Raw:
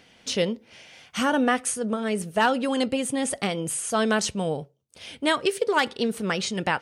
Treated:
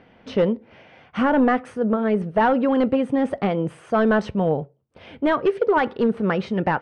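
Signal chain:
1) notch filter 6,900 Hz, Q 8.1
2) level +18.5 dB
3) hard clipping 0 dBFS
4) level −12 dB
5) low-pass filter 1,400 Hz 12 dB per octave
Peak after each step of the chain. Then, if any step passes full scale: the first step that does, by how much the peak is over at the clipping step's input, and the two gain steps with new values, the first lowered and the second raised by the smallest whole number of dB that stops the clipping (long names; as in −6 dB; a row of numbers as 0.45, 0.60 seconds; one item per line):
−10.0, +8.5, 0.0, −12.0, −11.5 dBFS
step 2, 8.5 dB
step 2 +9.5 dB, step 4 −3 dB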